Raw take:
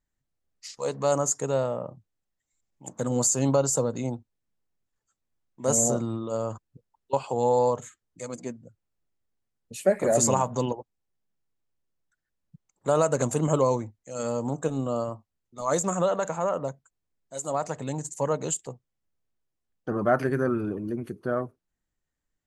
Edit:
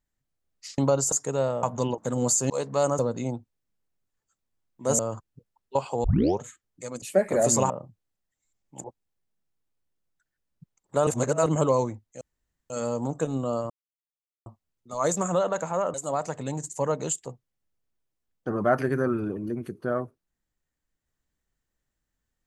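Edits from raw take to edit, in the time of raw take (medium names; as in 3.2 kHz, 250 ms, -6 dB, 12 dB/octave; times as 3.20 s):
0.78–1.27 s: swap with 3.44–3.78 s
1.78–2.92 s: swap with 10.41–10.76 s
5.78–6.37 s: delete
7.42 s: tape start 0.37 s
8.40–9.73 s: delete
12.99–13.38 s: reverse
14.13 s: insert room tone 0.49 s
15.13 s: insert silence 0.76 s
16.61–17.35 s: delete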